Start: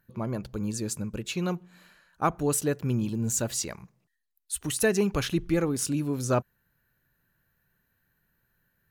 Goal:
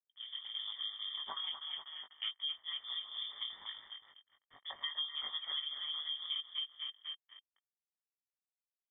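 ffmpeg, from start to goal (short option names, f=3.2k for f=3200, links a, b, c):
-filter_complex "[0:a]asettb=1/sr,asplit=3[a][b][c];[a]atrim=end=2.504[d];[b]atrim=start=2.5:end=4.96,asetpts=PTS-STARTPTS,afade=t=in:d=0.004:c=qsin,afade=t=out:st=2.456:d=0.004:c=qsin,equalizer=f=690:w=0.44:g=-11.5[e];[c]atrim=start=4.956[f];[d][e]acrossfade=d=0.004:c1=hsin:c2=qsin[g];[g][f]acrossfade=d=0.004:c1=qsin:c2=hsin,aecho=1:1:246|492|738|984|1230|1476:0.501|0.261|0.136|0.0705|0.0366|0.0191,aeval=exprs='sgn(val(0))*max(abs(val(0))-0.00794,0)':c=same,flanger=delay=16.5:depth=3.8:speed=0.33,aeval=exprs='val(0)*sin(2*PI*76*n/s)':c=same,asplit=3[h][i][j];[h]bandpass=f=530:t=q:w=8,volume=0dB[k];[i]bandpass=f=1.84k:t=q:w=8,volume=-6dB[l];[j]bandpass=f=2.48k:t=q:w=8,volume=-9dB[m];[k][l][m]amix=inputs=3:normalize=0,dynaudnorm=f=300:g=3:m=15dB,equalizer=f=150:w=1.4:g=3.5,acompressor=threshold=-39dB:ratio=5,lowpass=f=3.1k:t=q:w=0.5098,lowpass=f=3.1k:t=q:w=0.6013,lowpass=f=3.1k:t=q:w=0.9,lowpass=f=3.1k:t=q:w=2.563,afreqshift=-3700,volume=1dB"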